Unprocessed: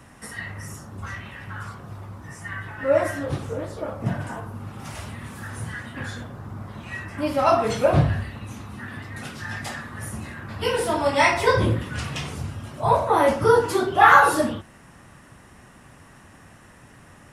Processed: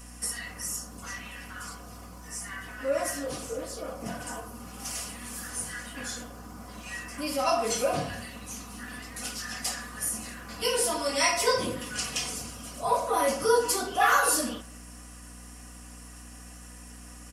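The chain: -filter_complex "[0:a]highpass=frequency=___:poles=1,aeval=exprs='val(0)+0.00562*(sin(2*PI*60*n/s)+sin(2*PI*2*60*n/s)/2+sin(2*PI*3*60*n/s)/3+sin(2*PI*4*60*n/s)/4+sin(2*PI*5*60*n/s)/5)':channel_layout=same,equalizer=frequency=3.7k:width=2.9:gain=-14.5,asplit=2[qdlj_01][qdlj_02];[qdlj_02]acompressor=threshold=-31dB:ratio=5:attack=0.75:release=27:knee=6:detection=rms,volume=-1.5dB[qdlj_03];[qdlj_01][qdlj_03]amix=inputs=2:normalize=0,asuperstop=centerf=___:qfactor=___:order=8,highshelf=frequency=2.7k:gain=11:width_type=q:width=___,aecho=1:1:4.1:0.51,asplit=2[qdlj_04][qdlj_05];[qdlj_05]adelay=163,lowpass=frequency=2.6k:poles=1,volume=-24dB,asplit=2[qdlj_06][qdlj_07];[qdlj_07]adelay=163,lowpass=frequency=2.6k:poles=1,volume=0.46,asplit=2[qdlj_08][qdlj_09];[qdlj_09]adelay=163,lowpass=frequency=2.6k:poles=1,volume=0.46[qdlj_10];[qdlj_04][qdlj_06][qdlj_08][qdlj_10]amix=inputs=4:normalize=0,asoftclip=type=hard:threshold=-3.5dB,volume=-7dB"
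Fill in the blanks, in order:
430, 880, 7.9, 1.5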